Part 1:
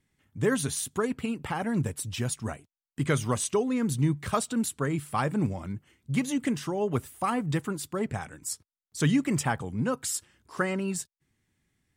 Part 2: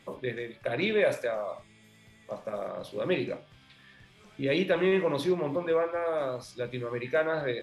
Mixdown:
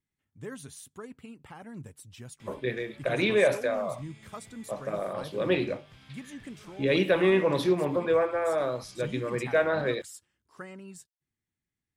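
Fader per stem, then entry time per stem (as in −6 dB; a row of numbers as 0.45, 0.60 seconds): −15.0, +2.5 decibels; 0.00, 2.40 seconds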